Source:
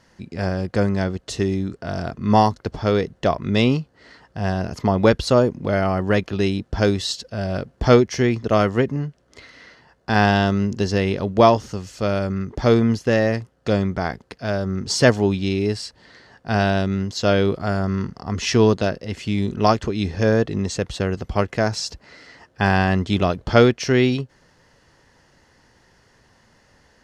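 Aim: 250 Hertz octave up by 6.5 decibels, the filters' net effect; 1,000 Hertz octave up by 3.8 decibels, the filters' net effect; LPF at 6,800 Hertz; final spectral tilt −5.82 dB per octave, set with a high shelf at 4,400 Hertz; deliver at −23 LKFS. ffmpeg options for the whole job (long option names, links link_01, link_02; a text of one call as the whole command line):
ffmpeg -i in.wav -af "lowpass=6800,equalizer=frequency=250:width_type=o:gain=8,equalizer=frequency=1000:width_type=o:gain=4.5,highshelf=frequency=4400:gain=4.5,volume=-6.5dB" out.wav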